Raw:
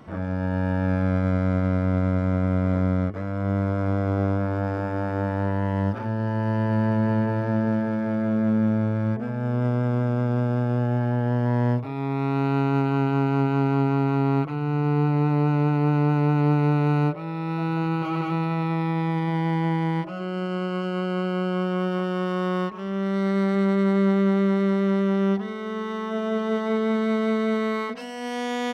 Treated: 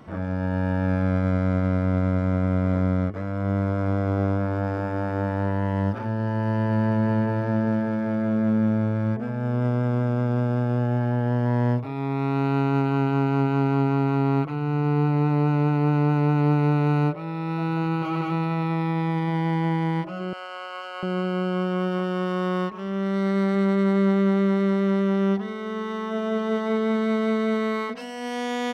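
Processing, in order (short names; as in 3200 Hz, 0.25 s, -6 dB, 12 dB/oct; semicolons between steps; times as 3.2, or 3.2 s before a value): 20.33–21.03 HPF 640 Hz 24 dB/oct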